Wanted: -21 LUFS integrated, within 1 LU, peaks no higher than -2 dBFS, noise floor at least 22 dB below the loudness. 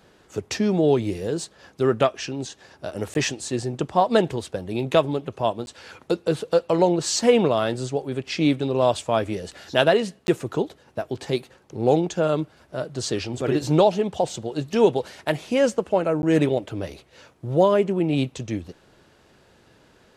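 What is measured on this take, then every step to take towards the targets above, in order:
dropouts 4; longest dropout 11 ms; loudness -23.0 LUFS; peak -2.0 dBFS; loudness target -21.0 LUFS
-> interpolate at 3.14/5.66/10.27/16.22, 11 ms; gain +2 dB; limiter -2 dBFS

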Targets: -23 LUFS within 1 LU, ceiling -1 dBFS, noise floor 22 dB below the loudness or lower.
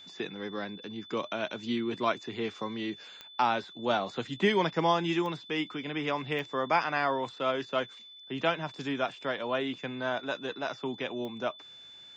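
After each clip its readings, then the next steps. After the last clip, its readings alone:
clicks 4; steady tone 3500 Hz; tone level -48 dBFS; loudness -32.0 LUFS; peak -13.5 dBFS; loudness target -23.0 LUFS
-> de-click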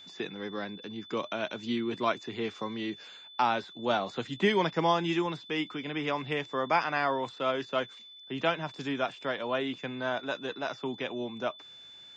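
clicks 0; steady tone 3500 Hz; tone level -48 dBFS
-> notch 3500 Hz, Q 30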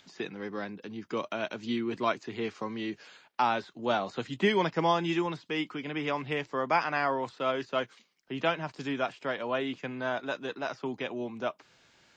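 steady tone none; loudness -32.0 LUFS; peak -13.5 dBFS; loudness target -23.0 LUFS
-> gain +9 dB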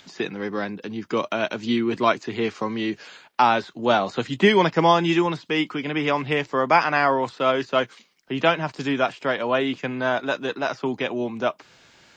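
loudness -23.0 LUFS; peak -4.5 dBFS; noise floor -55 dBFS

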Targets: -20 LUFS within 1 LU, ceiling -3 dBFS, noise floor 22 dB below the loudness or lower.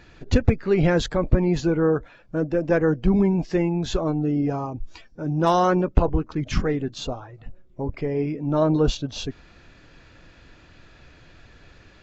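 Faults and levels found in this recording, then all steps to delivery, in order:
loudness -23.0 LUFS; peak -8.5 dBFS; loudness target -20.0 LUFS
-> gain +3 dB

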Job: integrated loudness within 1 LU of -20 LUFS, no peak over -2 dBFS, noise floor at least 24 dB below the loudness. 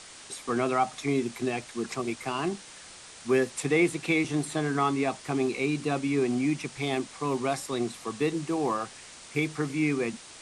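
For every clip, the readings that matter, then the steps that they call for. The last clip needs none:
noise floor -48 dBFS; noise floor target -53 dBFS; loudness -29.0 LUFS; peak -12.5 dBFS; loudness target -20.0 LUFS
-> denoiser 6 dB, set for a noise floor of -48 dBFS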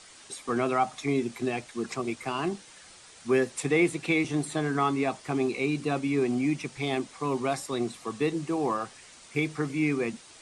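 noise floor -52 dBFS; noise floor target -53 dBFS
-> denoiser 6 dB, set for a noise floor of -52 dBFS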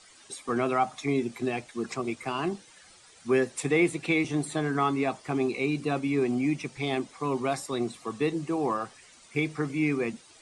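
noise floor -55 dBFS; loudness -29.0 LUFS; peak -12.5 dBFS; loudness target -20.0 LUFS
-> gain +9 dB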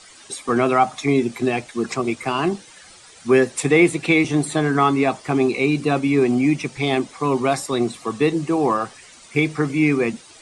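loudness -20.0 LUFS; peak -3.5 dBFS; noise floor -46 dBFS

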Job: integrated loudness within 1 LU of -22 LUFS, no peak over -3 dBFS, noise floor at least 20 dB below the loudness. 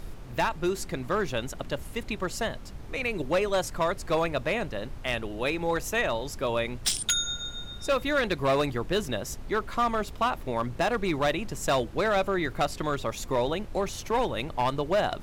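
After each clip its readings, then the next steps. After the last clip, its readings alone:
clipped 1.2%; flat tops at -19.0 dBFS; noise floor -41 dBFS; noise floor target -49 dBFS; loudness -28.5 LUFS; peak -19.0 dBFS; loudness target -22.0 LUFS
-> clip repair -19 dBFS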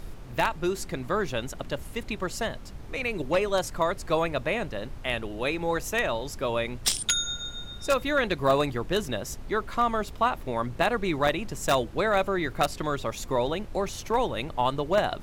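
clipped 0.0%; noise floor -41 dBFS; noise floor target -48 dBFS
-> noise print and reduce 7 dB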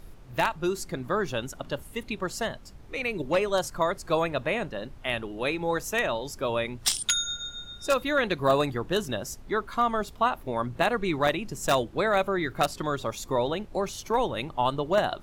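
noise floor -47 dBFS; noise floor target -48 dBFS
-> noise print and reduce 6 dB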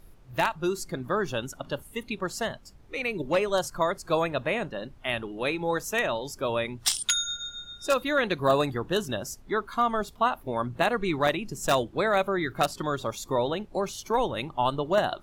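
noise floor -51 dBFS; loudness -28.0 LUFS; peak -10.0 dBFS; loudness target -22.0 LUFS
-> gain +6 dB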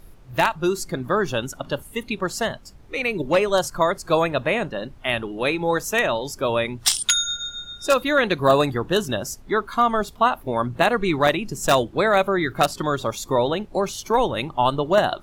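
loudness -22.0 LUFS; peak -4.0 dBFS; noise floor -45 dBFS

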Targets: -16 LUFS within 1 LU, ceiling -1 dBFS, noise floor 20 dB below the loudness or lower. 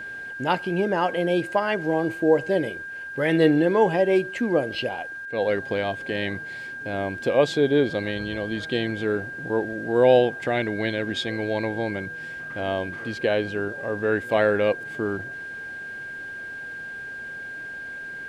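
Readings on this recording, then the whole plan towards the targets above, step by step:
steady tone 1600 Hz; tone level -33 dBFS; loudness -25.0 LUFS; peak -5.5 dBFS; loudness target -16.0 LUFS
-> notch 1600 Hz, Q 30; gain +9 dB; limiter -1 dBFS

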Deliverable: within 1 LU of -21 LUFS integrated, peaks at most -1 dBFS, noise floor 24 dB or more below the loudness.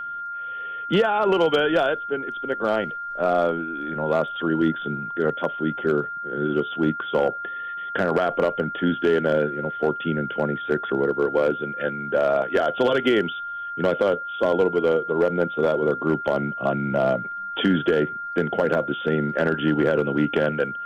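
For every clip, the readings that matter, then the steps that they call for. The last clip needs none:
clipped 0.6%; flat tops at -12.0 dBFS; steady tone 1400 Hz; tone level -29 dBFS; loudness -23.0 LUFS; peak -12.0 dBFS; loudness target -21.0 LUFS
-> clip repair -12 dBFS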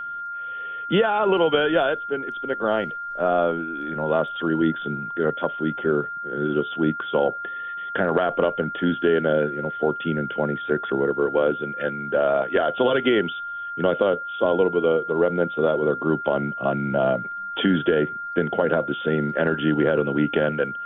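clipped 0.0%; steady tone 1400 Hz; tone level -29 dBFS
-> notch 1400 Hz, Q 30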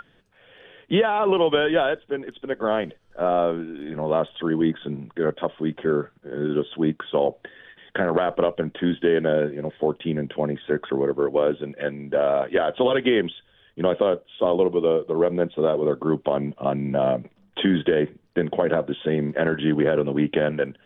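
steady tone none; loudness -23.5 LUFS; peak -7.5 dBFS; loudness target -21.0 LUFS
-> gain +2.5 dB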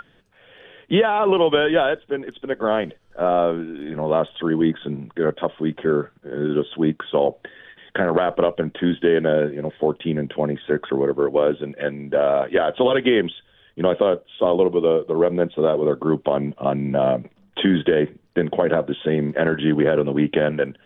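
loudness -21.0 LUFS; peak -5.0 dBFS; noise floor -58 dBFS

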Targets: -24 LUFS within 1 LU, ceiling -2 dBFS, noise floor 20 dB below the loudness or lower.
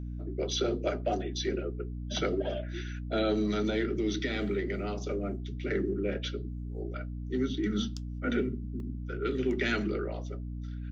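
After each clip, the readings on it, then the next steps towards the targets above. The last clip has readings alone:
dropouts 1; longest dropout 1.3 ms; hum 60 Hz; harmonics up to 300 Hz; hum level -35 dBFS; loudness -33.0 LUFS; peak -16.5 dBFS; loudness target -24.0 LUFS
-> interpolate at 8.8, 1.3 ms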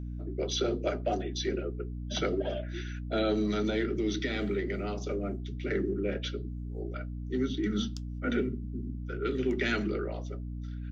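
dropouts 0; hum 60 Hz; harmonics up to 300 Hz; hum level -35 dBFS
-> de-hum 60 Hz, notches 5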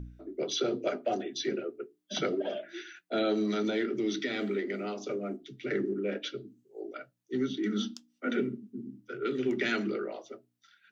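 hum none; loudness -33.0 LUFS; peak -17.0 dBFS; loudness target -24.0 LUFS
-> gain +9 dB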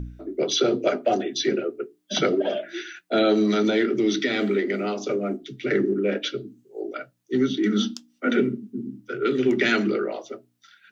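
loudness -24.0 LUFS; peak -8.0 dBFS; noise floor -66 dBFS

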